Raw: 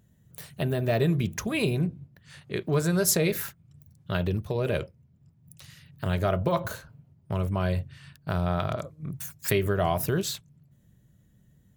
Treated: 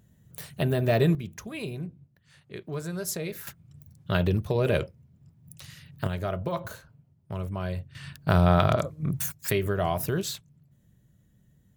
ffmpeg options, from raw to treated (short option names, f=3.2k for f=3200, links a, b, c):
-af "asetnsamples=n=441:p=0,asendcmd='1.15 volume volume -9dB;3.47 volume volume 3dB;6.07 volume volume -5dB;7.95 volume volume 7dB;9.32 volume volume -1.5dB',volume=2dB"